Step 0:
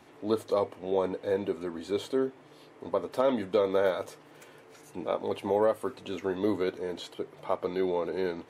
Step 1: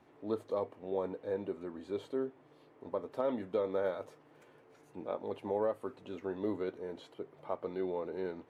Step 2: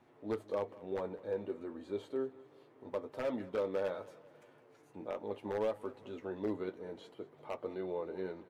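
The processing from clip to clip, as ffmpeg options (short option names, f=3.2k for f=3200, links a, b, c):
-af "highshelf=f=2.7k:g=-11.5,volume=-7dB"
-af "aeval=exprs='0.0501*(abs(mod(val(0)/0.0501+3,4)-2)-1)':c=same,aecho=1:1:198|396|594|792:0.1|0.052|0.027|0.0141,flanger=delay=8.2:depth=1.8:regen=-45:speed=0.67:shape=sinusoidal,volume=2dB"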